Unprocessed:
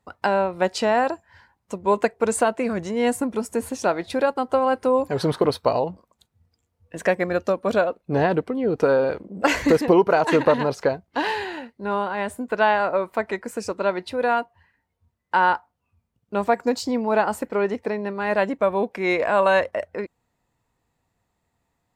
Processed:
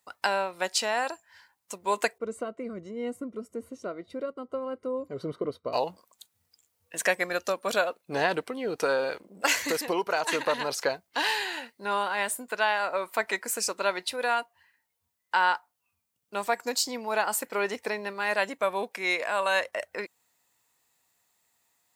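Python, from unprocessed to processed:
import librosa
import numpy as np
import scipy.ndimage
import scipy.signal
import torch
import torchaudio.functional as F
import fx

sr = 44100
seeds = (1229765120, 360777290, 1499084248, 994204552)

y = fx.moving_average(x, sr, points=52, at=(2.18, 5.73))
y = fx.tilt_eq(y, sr, slope=4.5)
y = fx.rider(y, sr, range_db=3, speed_s=0.5)
y = F.gain(torch.from_numpy(y), -4.5).numpy()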